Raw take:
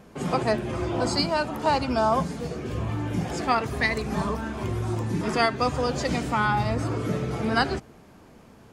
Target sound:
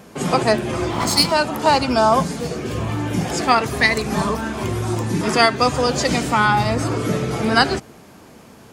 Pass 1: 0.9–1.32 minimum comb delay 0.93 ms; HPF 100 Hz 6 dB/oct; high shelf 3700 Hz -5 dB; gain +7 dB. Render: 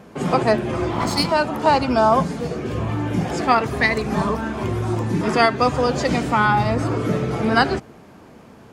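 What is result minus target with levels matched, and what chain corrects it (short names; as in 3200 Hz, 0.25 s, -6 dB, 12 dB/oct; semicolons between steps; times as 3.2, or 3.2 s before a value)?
8000 Hz band -8.0 dB
0.9–1.32 minimum comb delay 0.93 ms; HPF 100 Hz 6 dB/oct; high shelf 3700 Hz +6.5 dB; gain +7 dB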